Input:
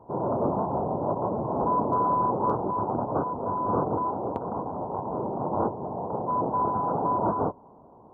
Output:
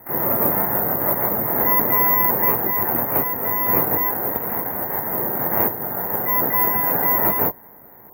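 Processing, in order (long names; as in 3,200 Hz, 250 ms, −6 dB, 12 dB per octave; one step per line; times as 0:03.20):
pitch-shifted copies added +12 semitones −7 dB
bad sample-rate conversion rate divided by 3×, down filtered, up zero stuff
level +1.5 dB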